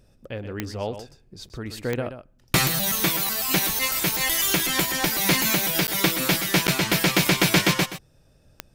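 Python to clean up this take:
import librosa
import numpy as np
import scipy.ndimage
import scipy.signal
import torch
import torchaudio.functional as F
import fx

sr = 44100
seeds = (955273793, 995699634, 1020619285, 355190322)

y = fx.fix_declick_ar(x, sr, threshold=10.0)
y = fx.fix_interpolate(y, sr, at_s=(1.49, 5.87, 6.67), length_ms=9.7)
y = fx.fix_echo_inverse(y, sr, delay_ms=125, level_db=-10.5)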